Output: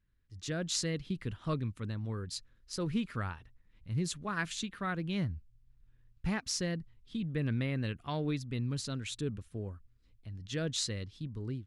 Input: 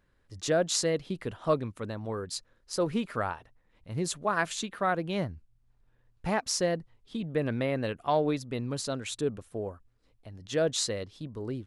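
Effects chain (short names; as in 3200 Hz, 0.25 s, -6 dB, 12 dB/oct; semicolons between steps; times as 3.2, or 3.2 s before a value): passive tone stack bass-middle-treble 6-0-2; AGC gain up to 8.5 dB; high shelf 5600 Hz -11.5 dB; gain +8 dB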